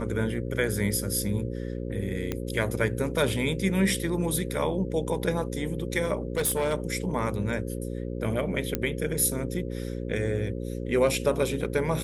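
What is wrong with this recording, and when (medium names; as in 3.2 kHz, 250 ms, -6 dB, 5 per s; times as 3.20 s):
buzz 60 Hz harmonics 9 -33 dBFS
2.32 s: pop -15 dBFS
6.37–6.74 s: clipped -21.5 dBFS
8.75 s: pop -10 dBFS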